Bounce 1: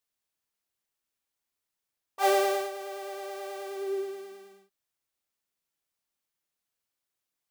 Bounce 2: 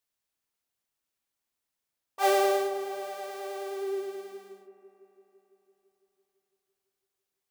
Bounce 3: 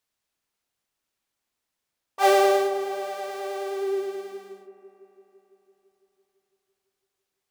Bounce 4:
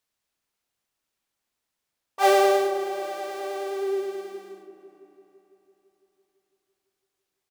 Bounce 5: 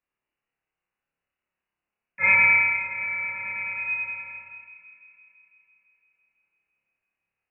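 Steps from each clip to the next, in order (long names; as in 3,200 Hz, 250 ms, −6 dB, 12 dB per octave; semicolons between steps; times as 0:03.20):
delay with a low-pass on its return 168 ms, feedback 74%, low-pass 1,100 Hz, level −9 dB
high-shelf EQ 9,500 Hz −7 dB; level +5.5 dB
echo with shifted repeats 381 ms, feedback 44%, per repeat −31 Hz, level −23 dB
flutter between parallel walls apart 4.9 metres, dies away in 0.68 s; voice inversion scrambler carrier 2,900 Hz; level −4 dB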